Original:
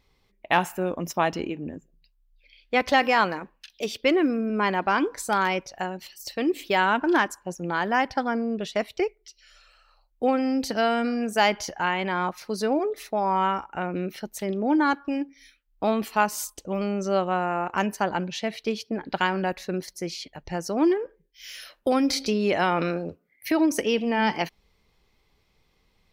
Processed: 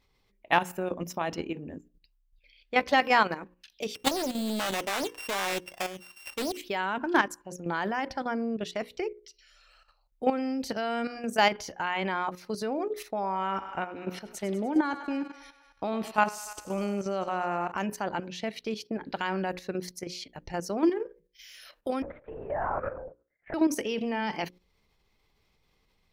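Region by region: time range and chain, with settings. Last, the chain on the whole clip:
3.95–6.57 s: sorted samples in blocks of 16 samples + bass shelf 270 Hz -4.5 dB + loudspeaker Doppler distortion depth 0.83 ms
13.10–17.72 s: low-pass 11 kHz + thinning echo 99 ms, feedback 70%, level -13 dB
22.02–23.54 s: Chebyshev band-pass 510–1700 Hz, order 3 + tilt shelf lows +3.5 dB, about 890 Hz + LPC vocoder at 8 kHz whisper
whole clip: hum notches 60/120/180/240/300/360/420/480/540 Hz; level held to a coarse grid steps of 10 dB

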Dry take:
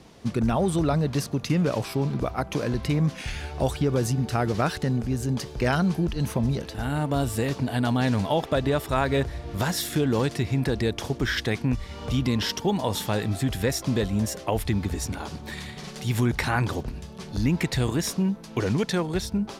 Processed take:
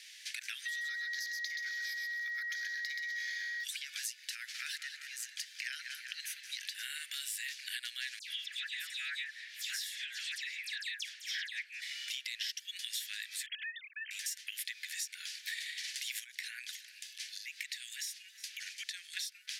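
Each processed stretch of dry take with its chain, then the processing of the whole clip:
0.65–3.63 s: whistle 1.9 kHz -33 dBFS + static phaser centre 2.7 kHz, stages 6 + feedback delay 127 ms, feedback 27%, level -5 dB
4.35–6.52 s: ladder high-pass 670 Hz, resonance 25% + filtered feedback delay 192 ms, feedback 62%, low-pass 4.5 kHz, level -10 dB
8.19–11.82 s: treble shelf 8 kHz -10.5 dB + tremolo 8.3 Hz, depth 32% + phase dispersion lows, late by 125 ms, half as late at 2.2 kHz
13.46–14.11 s: formants replaced by sine waves + compression 2:1, threshold -37 dBFS
16.24–19.17 s: peaking EQ 300 Hz -14.5 dB 2.6 oct + compression 3:1, threshold -41 dBFS + delay 362 ms -20 dB
whole clip: steep high-pass 1.7 kHz 72 dB/octave; compression, threshold -44 dBFS; trim +6.5 dB

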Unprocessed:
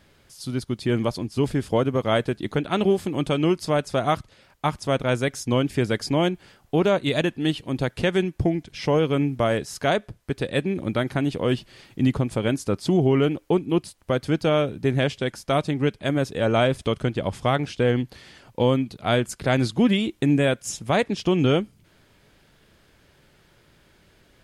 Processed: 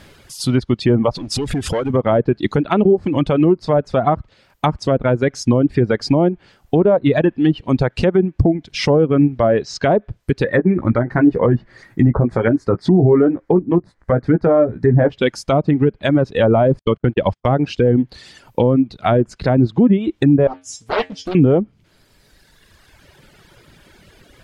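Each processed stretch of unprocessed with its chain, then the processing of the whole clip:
1.15–1.90 s: compression, threshold -35 dBFS + waveshaping leveller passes 3
9.38–9.92 s: low-pass 6.2 kHz 24 dB/octave + band-stop 890 Hz, Q 21
10.44–15.12 s: resonant high shelf 2.3 kHz -6.5 dB, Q 3 + doubling 17 ms -7 dB
16.79–17.53 s: gate -31 dBFS, range -44 dB + band-stop 680 Hz, Q 16
20.47–21.35 s: feedback comb 90 Hz, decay 0.26 s, harmonics odd, mix 90% + loudspeaker Doppler distortion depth 0.97 ms
whole clip: reverb removal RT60 1.9 s; low-pass that closes with the level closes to 700 Hz, closed at -18 dBFS; loudness maximiser +16.5 dB; trim -3.5 dB

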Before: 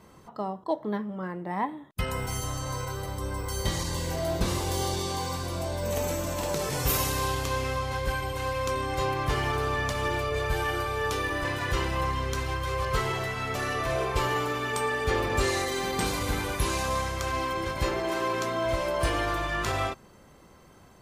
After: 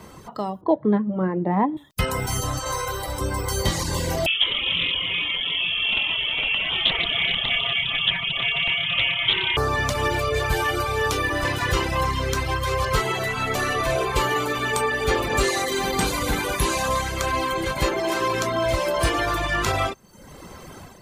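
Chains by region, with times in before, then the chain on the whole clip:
0.61–1.77 s: band-pass 140–2300 Hz + tilt shelf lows +9.5 dB, about 1.1 kHz
2.59–3.21 s: peaking EQ 170 Hz -13 dB 1.4 oct + flutter echo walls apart 11.5 m, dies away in 0.61 s
4.26–9.57 s: peaking EQ 1.7 kHz -10 dB 0.3 oct + frequency inversion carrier 3.3 kHz + loudspeaker Doppler distortion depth 0.22 ms
13.01–17.99 s: peaking EQ 88 Hz -8 dB 0.5 oct + band-stop 5.3 kHz, Q 13
whole clip: level rider gain up to 7 dB; reverb removal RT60 0.65 s; three bands compressed up and down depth 40%

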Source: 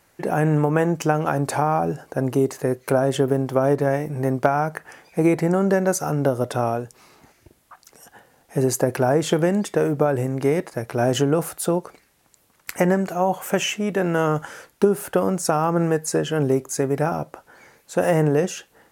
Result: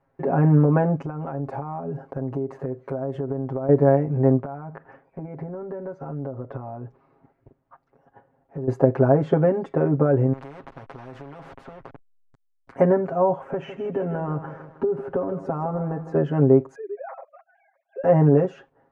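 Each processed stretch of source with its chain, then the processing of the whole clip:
0.96–3.69 s: treble shelf 9 kHz +8.5 dB + compression 8:1, threshold -27 dBFS
4.41–8.68 s: compression 8:1, threshold -30 dBFS + distance through air 140 m
10.33–12.70 s: hysteresis with a dead band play -34.5 dBFS + compression 3:1, threshold -25 dBFS + spectrum-flattening compressor 4:1
13.43–16.15 s: treble shelf 3.1 kHz -9.5 dB + compression 3:1, threshold -24 dBFS + bit-crushed delay 158 ms, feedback 55%, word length 8-bit, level -11 dB
16.75–18.04 s: formants replaced by sine waves + compression 2:1, threshold -42 dBFS + tilt EQ +2 dB/octave
whole clip: low-pass 1 kHz 12 dB/octave; gate -49 dBFS, range -7 dB; comb 7.4 ms, depth 97%; trim -1 dB

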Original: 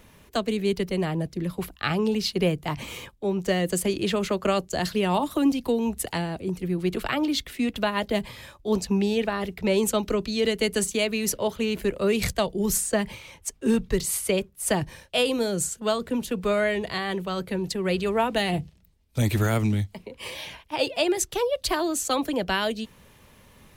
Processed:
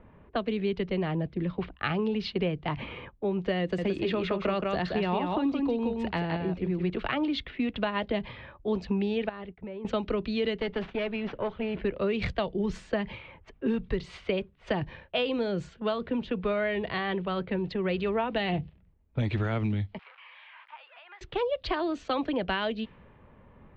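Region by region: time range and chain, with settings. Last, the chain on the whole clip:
3.61–6.90 s: band-stop 3.1 kHz, Q 18 + delay 172 ms -4.5 dB
9.29–9.85 s: expander -31 dBFS + compression 8:1, threshold -36 dBFS
10.59–11.75 s: CVSD coder 64 kbps + treble shelf 6.5 kHz -11 dB + valve stage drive 21 dB, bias 0.6
19.99–21.21 s: jump at every zero crossing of -38 dBFS + high-pass 1.1 kHz 24 dB/octave + compression 5:1, threshold -39 dBFS
whole clip: level-controlled noise filter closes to 1.2 kHz, open at -20 dBFS; low-pass 3.5 kHz 24 dB/octave; compression 3:1, threshold -26 dBFS

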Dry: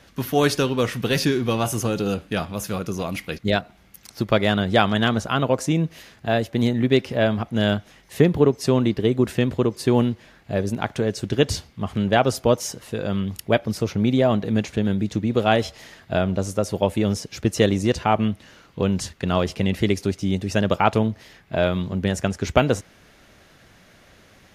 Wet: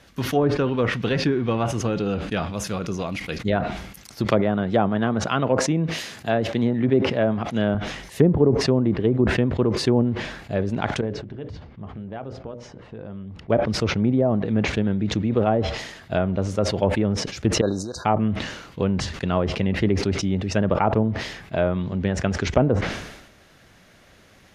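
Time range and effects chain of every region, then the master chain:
4.25–7.75 s: high-pass 110 Hz + treble shelf 4.6 kHz +8 dB
11.01–13.50 s: tape spacing loss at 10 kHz 43 dB + compression 3:1, threshold -33 dBFS + hum notches 60/120/180/240/300/360/420/480/540/600 Hz
17.61–18.05 s: bass shelf 380 Hz -11 dB + compression 4:1, threshold -27 dBFS + brick-wall FIR band-stop 1.7–3.7 kHz
whole clip: low-pass that closes with the level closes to 720 Hz, closed at -13.5 dBFS; decay stretcher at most 59 dB/s; trim -1 dB

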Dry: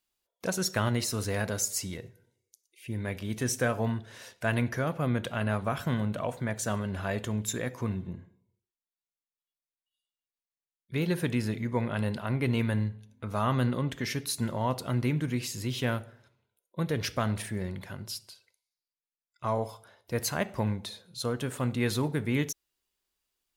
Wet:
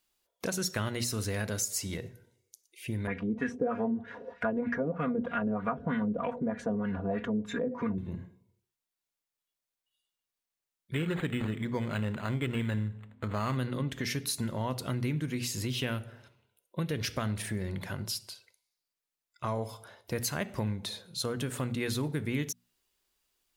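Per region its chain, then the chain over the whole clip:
3.07–7.98 s: treble shelf 8.9 kHz +9.5 dB + comb 4.2 ms, depth 97% + LFO low-pass sine 3.2 Hz 390–2000 Hz
10.94–13.57 s: treble shelf 2 kHz +8 dB + decimation joined by straight lines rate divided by 8×
15.75–16.96 s: peaking EQ 2.8 kHz +7.5 dB 0.2 oct + band-stop 6.9 kHz, Q 23
whole clip: hum notches 60/120/180/240 Hz; dynamic bell 800 Hz, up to -5 dB, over -43 dBFS, Q 0.92; compression 2.5:1, threshold -37 dBFS; trim +5 dB

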